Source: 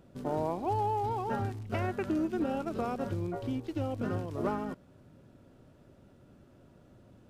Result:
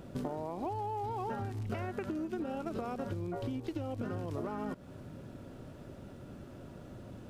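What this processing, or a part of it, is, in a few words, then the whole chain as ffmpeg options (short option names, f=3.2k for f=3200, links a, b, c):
serial compression, leveller first: -af "acompressor=threshold=-33dB:ratio=6,acompressor=threshold=-44dB:ratio=6,volume=9.5dB"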